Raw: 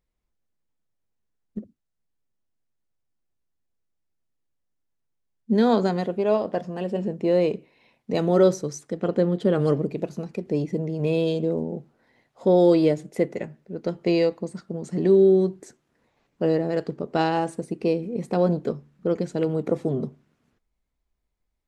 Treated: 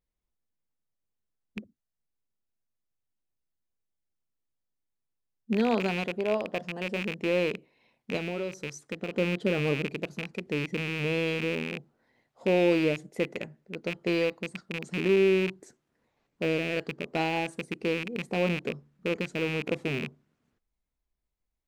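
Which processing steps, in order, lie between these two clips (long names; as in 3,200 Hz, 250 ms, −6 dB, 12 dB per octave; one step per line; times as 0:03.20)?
loose part that buzzes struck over −31 dBFS, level −16 dBFS
0:08.16–0:09.14: downward compressor 10 to 1, threshold −23 dBFS, peak gain reduction 11 dB
level −6.5 dB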